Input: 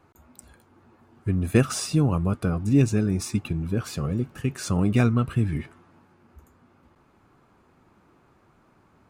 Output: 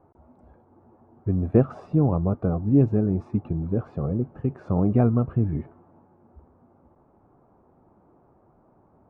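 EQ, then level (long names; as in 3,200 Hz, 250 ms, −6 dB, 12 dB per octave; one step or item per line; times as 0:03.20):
low-pass with resonance 730 Hz, resonance Q 1.7
0.0 dB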